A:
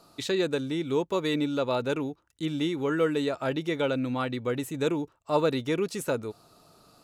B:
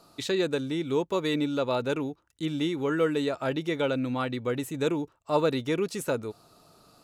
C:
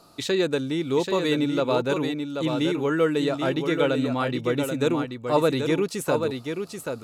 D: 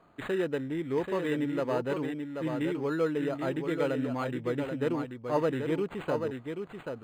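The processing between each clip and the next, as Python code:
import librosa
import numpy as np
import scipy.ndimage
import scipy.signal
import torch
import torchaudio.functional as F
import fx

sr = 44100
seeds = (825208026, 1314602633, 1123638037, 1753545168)

y1 = x
y2 = y1 + 10.0 ** (-6.0 / 20.0) * np.pad(y1, (int(784 * sr / 1000.0), 0))[:len(y1)]
y2 = y2 * librosa.db_to_amplitude(3.5)
y3 = np.interp(np.arange(len(y2)), np.arange(len(y2))[::8], y2[::8])
y3 = y3 * librosa.db_to_amplitude(-6.5)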